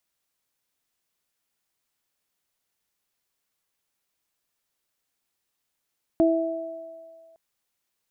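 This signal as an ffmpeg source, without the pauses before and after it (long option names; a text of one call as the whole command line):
ffmpeg -f lavfi -i "aevalsrc='0.158*pow(10,-3*t/1.17)*sin(2*PI*328*t)+0.112*pow(10,-3*t/2.1)*sin(2*PI*656*t)':duration=1.16:sample_rate=44100" out.wav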